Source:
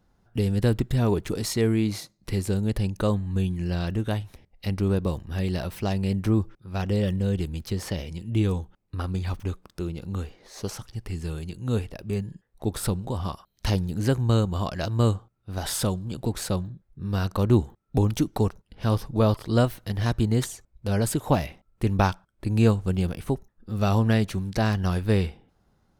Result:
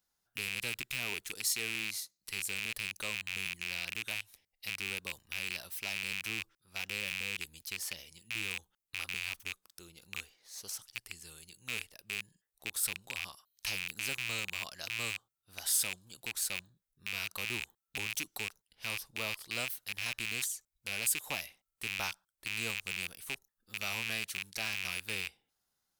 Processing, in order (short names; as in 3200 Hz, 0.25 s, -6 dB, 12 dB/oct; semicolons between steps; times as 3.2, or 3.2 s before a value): rattling part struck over -28 dBFS, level -14 dBFS; pre-emphasis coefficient 0.97